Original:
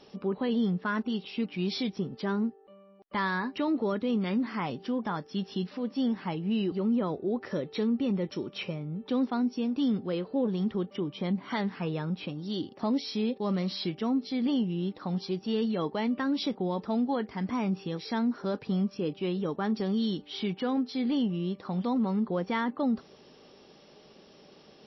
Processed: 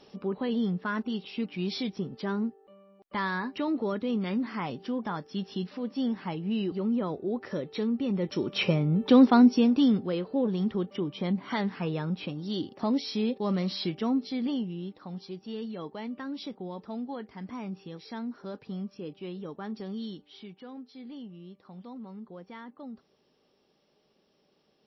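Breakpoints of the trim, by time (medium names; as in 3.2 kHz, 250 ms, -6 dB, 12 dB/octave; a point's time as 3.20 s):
8.08 s -1 dB
8.72 s +10.5 dB
9.47 s +10.5 dB
10.13 s +1 dB
14.14 s +1 dB
15.04 s -8 dB
20.04 s -8 dB
20.52 s -15 dB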